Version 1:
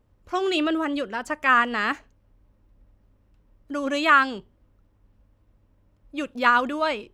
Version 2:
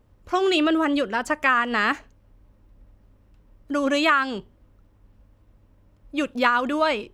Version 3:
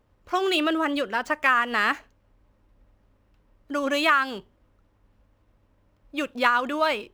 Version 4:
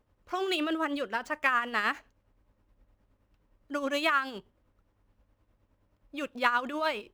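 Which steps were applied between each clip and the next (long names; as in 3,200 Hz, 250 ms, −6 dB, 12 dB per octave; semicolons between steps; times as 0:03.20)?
downward compressor 6 to 1, threshold −21 dBFS, peak gain reduction 9.5 dB; level +5 dB
running median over 5 samples; low-shelf EQ 380 Hz −8 dB
amplitude tremolo 9.6 Hz, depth 50%; level −4 dB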